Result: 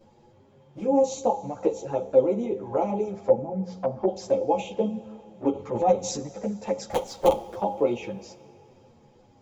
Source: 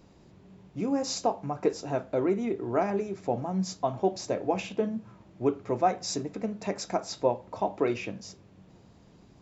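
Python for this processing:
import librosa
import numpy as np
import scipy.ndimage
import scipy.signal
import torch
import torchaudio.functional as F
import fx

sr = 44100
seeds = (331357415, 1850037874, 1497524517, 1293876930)

y = fx.cycle_switch(x, sr, every=3, mode='inverted', at=(6.89, 7.55))
y = fx.peak_eq(y, sr, hz=3500.0, db=-2.5, octaves=1.8)
y = fx.small_body(y, sr, hz=(530.0, 830.0, 3200.0), ring_ms=80, db=15)
y = fx.env_lowpass_down(y, sr, base_hz=560.0, full_db=-20.5, at=(3.23, 4.08))
y = fx.env_flanger(y, sr, rest_ms=9.6, full_db=-23.5)
y = fx.transient(y, sr, attack_db=-6, sustain_db=7, at=(5.5, 6.18))
y = fx.rev_schroeder(y, sr, rt60_s=2.8, comb_ms=25, drr_db=16.5)
y = fx.ensemble(y, sr)
y = y * 10.0 ** (4.0 / 20.0)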